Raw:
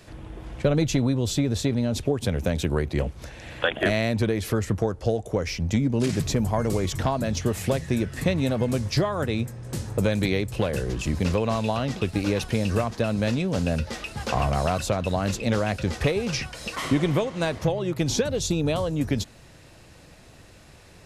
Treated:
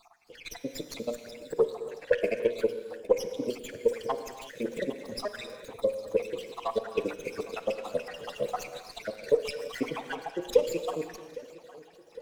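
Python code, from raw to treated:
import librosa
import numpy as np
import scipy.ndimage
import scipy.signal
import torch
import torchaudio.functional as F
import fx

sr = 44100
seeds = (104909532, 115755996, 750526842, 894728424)

p1 = fx.spec_dropout(x, sr, seeds[0], share_pct=82)
p2 = scipy.signal.sosfilt(scipy.signal.butter(2, 360.0, 'highpass', fs=sr, output='sos'), p1)
p3 = fx.peak_eq(p2, sr, hz=480.0, db=14.5, octaves=0.31)
p4 = fx.hum_notches(p3, sr, base_hz=60, count=10)
p5 = fx.stretch_vocoder(p4, sr, factor=0.58)
p6 = p5 + fx.echo_filtered(p5, sr, ms=808, feedback_pct=59, hz=4900.0, wet_db=-19.0, dry=0)
p7 = fx.rev_gated(p6, sr, seeds[1], gate_ms=380, shape='flat', drr_db=9.0)
y = fx.running_max(p7, sr, window=3)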